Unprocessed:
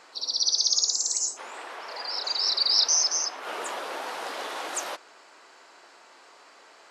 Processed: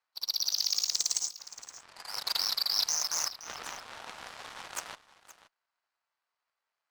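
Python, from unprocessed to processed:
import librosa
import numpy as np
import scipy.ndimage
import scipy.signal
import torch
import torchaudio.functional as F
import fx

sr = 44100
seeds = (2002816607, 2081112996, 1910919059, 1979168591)

p1 = scipy.signal.sosfilt(scipy.signal.butter(2, 830.0, 'highpass', fs=sr, output='sos'), x)
p2 = fx.high_shelf(p1, sr, hz=6100.0, db=-7.0)
p3 = fx.notch(p2, sr, hz=7100.0, q=17.0)
p4 = fx.over_compress(p3, sr, threshold_db=-30.0, ratio=-0.5)
p5 = p3 + (p4 * 10.0 ** (0.0 / 20.0))
p6 = fx.cheby_harmonics(p5, sr, harmonics=(7,), levels_db=(-17,), full_scale_db=-9.5)
p7 = p6 + 10.0 ** (-16.5 / 20.0) * np.pad(p6, (int(521 * sr / 1000.0), 0))[:len(p6)]
p8 = fx.doppler_dist(p7, sr, depth_ms=0.26)
y = p8 * 10.0 ** (-3.5 / 20.0)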